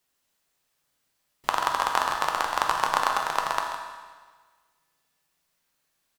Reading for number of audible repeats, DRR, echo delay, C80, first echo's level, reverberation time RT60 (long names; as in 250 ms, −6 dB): 1, 0.5 dB, 136 ms, 4.0 dB, −11.0 dB, 1.5 s